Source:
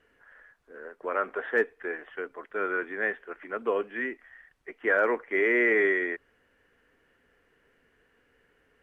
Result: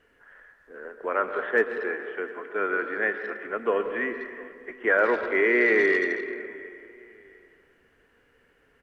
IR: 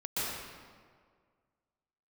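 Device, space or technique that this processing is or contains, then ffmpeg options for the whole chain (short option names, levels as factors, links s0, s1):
saturated reverb return: -filter_complex "[0:a]asettb=1/sr,asplit=3[s0][s1][s2];[s0]atrim=end=1.744[s3];[s1]atrim=start=1.74:end=3.46,asetpts=PTS-STARTPTS,afade=t=in:d=0.004:c=qsin,afade=t=out:st=1.716:d=0.004:c=qsin,highpass=130[s4];[s2]atrim=start=3.456[s5];[s3][s4]acrossfade=d=0.004:c1=hsin:c2=qsin[s6];[s6][s5]acrossfade=d=0.004:c1=qsin:c2=hsin,aecho=1:1:703|1406:0.0794|0.0246,asplit=2[s7][s8];[1:a]atrim=start_sample=2205[s9];[s8][s9]afir=irnorm=-1:irlink=0,asoftclip=type=tanh:threshold=0.237,volume=0.237[s10];[s7][s10]amix=inputs=2:normalize=0,volume=1.19"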